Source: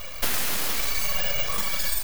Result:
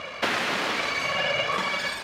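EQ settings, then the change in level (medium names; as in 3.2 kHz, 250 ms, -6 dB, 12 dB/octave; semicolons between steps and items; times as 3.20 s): band-pass 200–2800 Hz; +7.5 dB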